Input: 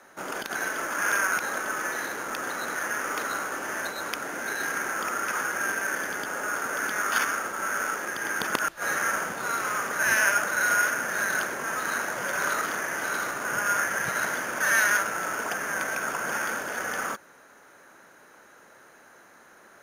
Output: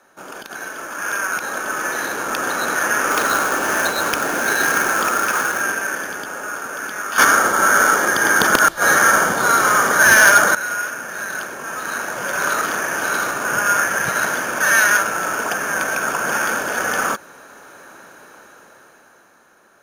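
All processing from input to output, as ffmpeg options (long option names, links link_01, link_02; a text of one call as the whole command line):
ffmpeg -i in.wav -filter_complex "[0:a]asettb=1/sr,asplit=3[link_01][link_02][link_03];[link_01]atrim=end=3.114[link_04];[link_02]atrim=start=3.11:end=5.61,asetpts=PTS-STARTPTS,afade=type=in:duration=0.004:curve=qsin,afade=type=out:start_time=2.496:duration=0.004:curve=qsin,acrusher=bits=3:mode=log:mix=0:aa=0.000001,volume=19.5dB,asoftclip=hard,volume=-19.5dB[link_05];[link_03]atrim=start=5.606[link_06];[link_04][link_05]acrossfade=duration=0.004:curve1=hsin:curve2=qsin[link_07];[link_07][link_06]acrossfade=duration=0.004:curve1=qsin:curve2=hsin,asettb=1/sr,asplit=3[link_08][link_09][link_10];[link_08]atrim=end=7.184[link_11];[link_09]atrim=start=7.18:end=10.55,asetpts=PTS-STARTPTS,afade=type=in:duration=0.004:curve=qsin,afade=type=out:start_time=3.366:duration=0.004:curve=qsin,bandreject=frequency=2600:width=5.7,acontrast=75,aeval=exprs='0.668*sin(PI/2*1.58*val(0)/0.668)':channel_layout=same[link_12];[link_10]atrim=start=10.546[link_13];[link_11][link_12]acrossfade=duration=0.004:curve1=hsin:curve2=qsin[link_14];[link_14][link_13]acrossfade=duration=0.004:curve1=qsin:curve2=hsin,bandreject=frequency=2000:width=7.9,dynaudnorm=framelen=200:gausssize=17:maxgain=15.5dB,volume=-1dB" out.wav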